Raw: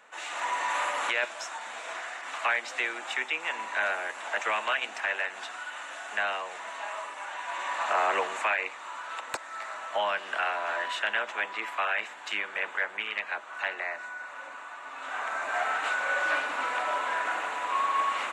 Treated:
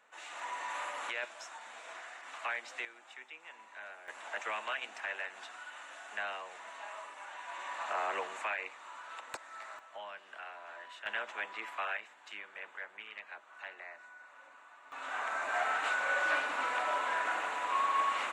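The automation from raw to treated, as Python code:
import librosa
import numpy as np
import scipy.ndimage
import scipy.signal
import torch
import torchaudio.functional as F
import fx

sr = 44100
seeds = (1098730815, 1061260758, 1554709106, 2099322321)

y = fx.gain(x, sr, db=fx.steps((0.0, -10.0), (2.85, -19.5), (4.08, -9.0), (9.79, -17.5), (11.06, -8.0), (11.97, -14.5), (14.92, -3.5)))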